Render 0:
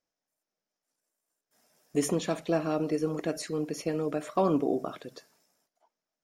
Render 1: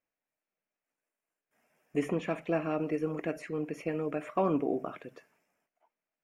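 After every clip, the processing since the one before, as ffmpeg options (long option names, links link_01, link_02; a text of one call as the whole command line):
ffmpeg -i in.wav -filter_complex "[0:a]acrossover=split=3900[link_01][link_02];[link_02]alimiter=level_in=7.5dB:limit=-24dB:level=0:latency=1:release=446,volume=-7.5dB[link_03];[link_01][link_03]amix=inputs=2:normalize=0,highshelf=frequency=3200:width_type=q:width=3:gain=-8.5,volume=-3dB" out.wav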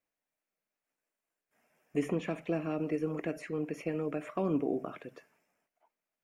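ffmpeg -i in.wav -filter_complex "[0:a]acrossover=split=450|3000[link_01][link_02][link_03];[link_02]acompressor=threshold=-38dB:ratio=6[link_04];[link_01][link_04][link_03]amix=inputs=3:normalize=0" out.wav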